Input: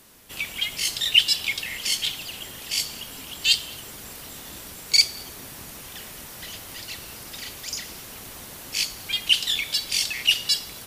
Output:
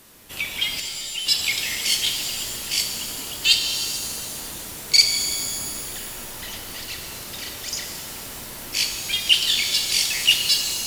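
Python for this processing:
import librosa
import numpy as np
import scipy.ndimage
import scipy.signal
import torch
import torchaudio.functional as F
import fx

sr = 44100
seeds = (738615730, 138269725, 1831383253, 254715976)

y = fx.comb_fb(x, sr, f0_hz=180.0, decay_s=1.4, harmonics='all', damping=0.0, mix_pct=90, at=(0.79, 1.25), fade=0.02)
y = fx.rev_shimmer(y, sr, seeds[0], rt60_s=2.1, semitones=7, shimmer_db=-2, drr_db=5.0)
y = y * 10.0 ** (2.0 / 20.0)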